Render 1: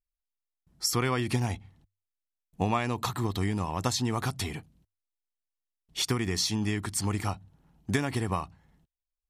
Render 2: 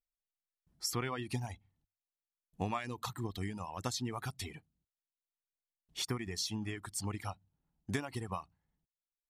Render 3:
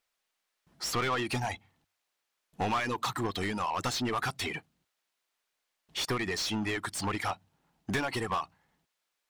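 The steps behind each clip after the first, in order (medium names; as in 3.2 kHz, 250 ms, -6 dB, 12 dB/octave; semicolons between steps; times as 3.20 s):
reverb removal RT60 1.2 s; trim -8 dB
overdrive pedal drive 25 dB, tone 3.1 kHz, clips at -22.5 dBFS; trim +1 dB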